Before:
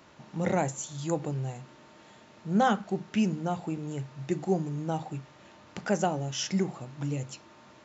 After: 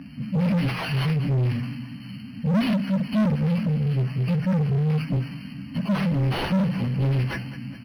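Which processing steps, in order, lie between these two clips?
frequency axis rescaled in octaves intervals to 110%; high-order bell 2 kHz +9.5 dB; in parallel at 0 dB: compression, threshold -40 dBFS, peak gain reduction 19 dB; on the sum: FFT band-reject 290–4200 Hz; level-controlled noise filter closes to 2.4 kHz, open at -26.5 dBFS; on a send: feedback delay 206 ms, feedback 57%, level -19 dB; on the sum: overdrive pedal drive 35 dB, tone 4.5 kHz, clips at -16.5 dBFS; decimation joined by straight lines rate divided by 6×; trim +2.5 dB

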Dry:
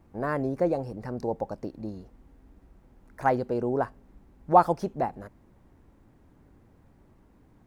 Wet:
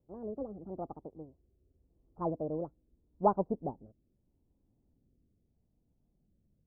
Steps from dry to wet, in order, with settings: gliding tape speed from 163% -> 67%; rotary cabinet horn 0.8 Hz; Gaussian low-pass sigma 12 samples; upward expansion 1.5:1, over -53 dBFS; trim +1.5 dB

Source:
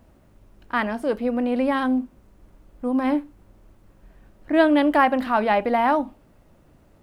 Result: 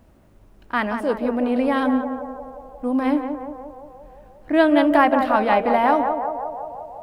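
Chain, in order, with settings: band-passed feedback delay 177 ms, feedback 73%, band-pass 650 Hz, level -5 dB; trim +1 dB

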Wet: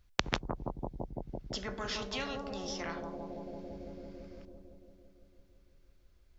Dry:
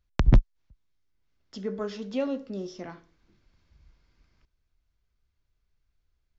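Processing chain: bucket-brigade echo 168 ms, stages 1024, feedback 73%, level -5.5 dB; spectrum-flattening compressor 4:1; trim +3 dB

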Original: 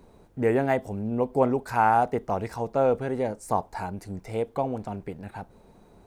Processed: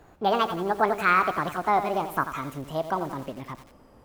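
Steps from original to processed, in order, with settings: gliding tape speed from 175% -> 125%; bit-crushed delay 88 ms, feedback 55%, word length 7-bit, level -10 dB

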